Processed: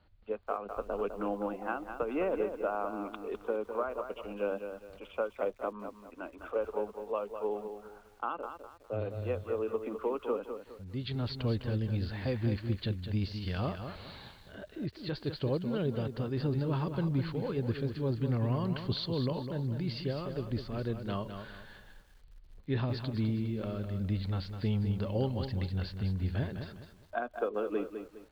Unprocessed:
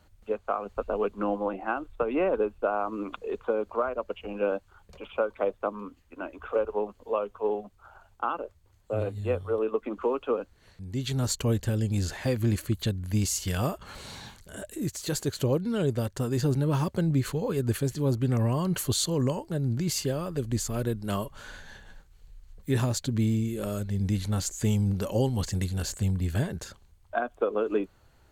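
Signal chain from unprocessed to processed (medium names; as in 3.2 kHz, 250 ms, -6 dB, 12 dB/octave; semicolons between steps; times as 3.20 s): steep low-pass 4.7 kHz 72 dB/octave; bit-crushed delay 205 ms, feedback 35%, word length 9-bit, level -8 dB; trim -6 dB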